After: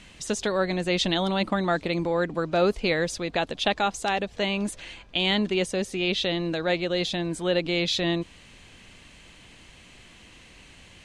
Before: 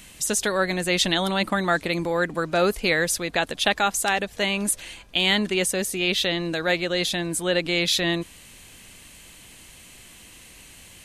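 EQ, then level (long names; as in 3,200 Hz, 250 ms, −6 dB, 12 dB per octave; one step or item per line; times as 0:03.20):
dynamic equaliser 1,700 Hz, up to −6 dB, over −38 dBFS, Q 1.4
high-frequency loss of the air 110 metres
0.0 dB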